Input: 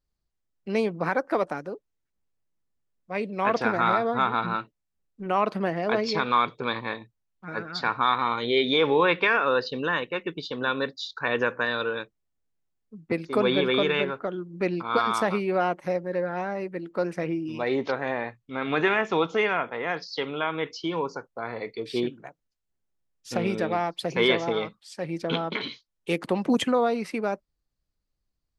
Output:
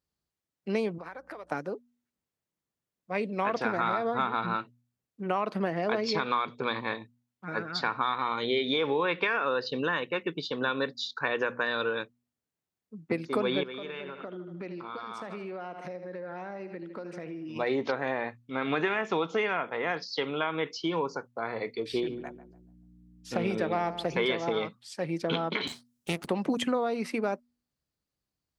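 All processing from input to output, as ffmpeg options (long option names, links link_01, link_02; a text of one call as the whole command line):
ffmpeg -i in.wav -filter_complex "[0:a]asettb=1/sr,asplit=3[link_01][link_02][link_03];[link_01]atrim=end=0.984[link_04];[link_02]atrim=start=0.98:end=1.52,asetpts=PTS-STARTPTS,afade=type=in:duration=0.004:curve=qsin,afade=type=out:start_time=0.536:duration=0.004:curve=qsin,acompressor=threshold=-35dB:ratio=16:attack=3.2:release=140:knee=1:detection=peak,highpass=frequency=470:poles=1,aeval=exprs='val(0)+0.000891*(sin(2*PI*60*n/s)+sin(2*PI*2*60*n/s)/2+sin(2*PI*3*60*n/s)/3+sin(2*PI*4*60*n/s)/4+sin(2*PI*5*60*n/s)/5)':channel_layout=same[link_05];[link_03]atrim=start=1.516[link_06];[link_04][link_05]acrossfade=duration=0.004:curve1=hsin:curve2=qsin[link_07];[link_07][link_06]acrossfade=duration=0.004:curve1=qsin:curve2=hsin,asettb=1/sr,asplit=3[link_08][link_09][link_10];[link_08]atrim=end=13.634[link_11];[link_09]atrim=start=13.63:end=17.56,asetpts=PTS-STARTPTS,afade=type=in:duration=0.004:curve=qsin,afade=type=out:start_time=3.926:duration=0.004:curve=qsin,aecho=1:1:77|154|231|308:0.2|0.0898|0.0404|0.0182,atrim=end_sample=173313,acompressor=threshold=-36dB:ratio=6:attack=3.2:release=140:knee=1:detection=peak,highpass=100,lowpass=6900[link_12];[link_10]atrim=start=17.556[link_13];[link_11][link_12]acrossfade=duration=0.004:curve1=hsin:curve2=qsin[link_14];[link_14][link_13]acrossfade=duration=0.004:curve1=qsin:curve2=hsin,asettb=1/sr,asplit=3[link_15][link_16][link_17];[link_15]atrim=end=21.924[link_18];[link_16]atrim=start=21.92:end=24.26,asetpts=PTS-STARTPTS,afade=type=in:duration=0.004:curve=qsin,afade=type=out:start_time=2.336:duration=0.004:curve=qsin,acrossover=split=3800[link_19][link_20];[link_20]acompressor=threshold=-45dB:ratio=4:attack=1:release=60[link_21];[link_19][link_21]amix=inputs=2:normalize=0,aeval=exprs='val(0)+0.00355*(sin(2*PI*60*n/s)+sin(2*PI*2*60*n/s)/2+sin(2*PI*3*60*n/s)/3+sin(2*PI*4*60*n/s)/4+sin(2*PI*5*60*n/s)/5)':channel_layout=same,asplit=2[link_22][link_23];[link_23]adelay=144,lowpass=frequency=990:poles=1,volume=-12dB,asplit=2[link_24][link_25];[link_25]adelay=144,lowpass=frequency=990:poles=1,volume=0.38,asplit=2[link_26][link_27];[link_27]adelay=144,lowpass=frequency=990:poles=1,volume=0.38,asplit=2[link_28][link_29];[link_29]adelay=144,lowpass=frequency=990:poles=1,volume=0.38[link_30];[link_22][link_24][link_26][link_28][link_30]amix=inputs=5:normalize=0,atrim=end_sample=103194[link_31];[link_17]atrim=start=24.256[link_32];[link_18][link_31]acrossfade=duration=0.004:curve1=hsin:curve2=qsin[link_33];[link_33][link_32]acrossfade=duration=0.004:curve1=qsin:curve2=hsin,asettb=1/sr,asplit=3[link_34][link_35][link_36];[link_34]atrim=end=25.674[link_37];[link_35]atrim=start=25.67:end=26.28,asetpts=PTS-STARTPTS,afade=type=in:duration=0.004:curve=qsin,afade=type=out:start_time=0.606:duration=0.004:curve=qsin,bass=frequency=250:gain=9,treble=frequency=4000:gain=10,aeval=exprs='max(val(0),0)':channel_layout=same[link_38];[link_36]atrim=start=26.276[link_39];[link_37][link_38]acrossfade=duration=0.004:curve1=hsin:curve2=qsin[link_40];[link_40][link_39]acrossfade=duration=0.004:curve1=qsin:curve2=hsin,acompressor=threshold=-24dB:ratio=6,highpass=93,bandreject=frequency=120.7:width_type=h:width=4,bandreject=frequency=241.4:width_type=h:width=4" out.wav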